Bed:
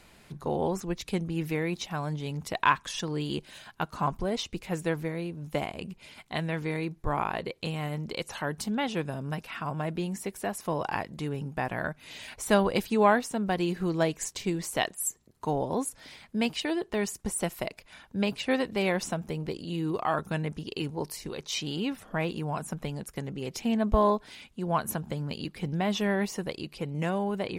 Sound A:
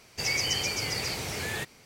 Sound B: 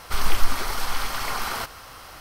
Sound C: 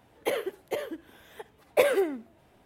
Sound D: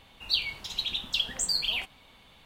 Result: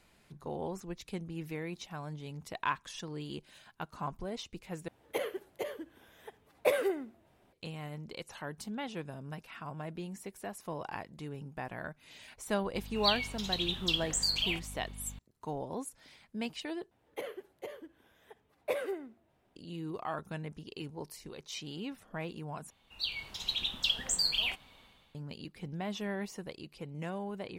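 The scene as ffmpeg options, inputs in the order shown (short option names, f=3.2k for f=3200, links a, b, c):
-filter_complex "[3:a]asplit=2[a][b];[4:a]asplit=2[c][d];[0:a]volume=-9.5dB[e];[c]aeval=exprs='val(0)+0.00794*(sin(2*PI*50*n/s)+sin(2*PI*2*50*n/s)/2+sin(2*PI*3*50*n/s)/3+sin(2*PI*4*50*n/s)/4+sin(2*PI*5*50*n/s)/5)':c=same[f];[b]highshelf=f=5.2k:g=-3.5[g];[d]dynaudnorm=f=120:g=7:m=11dB[h];[e]asplit=4[i][j][k][l];[i]atrim=end=4.884[m];[a]atrim=end=2.65,asetpts=PTS-STARTPTS,volume=-6dB[n];[j]atrim=start=7.526:end=16.914[o];[g]atrim=end=2.65,asetpts=PTS-STARTPTS,volume=-11.5dB[p];[k]atrim=start=19.556:end=22.704[q];[h]atrim=end=2.45,asetpts=PTS-STARTPTS,volume=-12.5dB[r];[l]atrim=start=25.146[s];[f]atrim=end=2.45,asetpts=PTS-STARTPTS,volume=-3dB,afade=t=in:d=0.004:c=hsin,afade=t=out:st=2.446:d=0.004:c=hsin,adelay=12740[t];[m][n]acrossfade=d=0.004:c1=hsin:c2=hsin[u];[u][o]acrossfade=d=0.004:c1=hsin:c2=hsin[v];[v][p]acrossfade=d=0.004:c1=hsin:c2=hsin[w];[w][q]acrossfade=d=0.004:c1=hsin:c2=hsin[x];[x][r]acrossfade=d=0.004:c1=hsin:c2=hsin[y];[y][s]acrossfade=d=0.004:c1=hsin:c2=hsin[z];[z][t]amix=inputs=2:normalize=0"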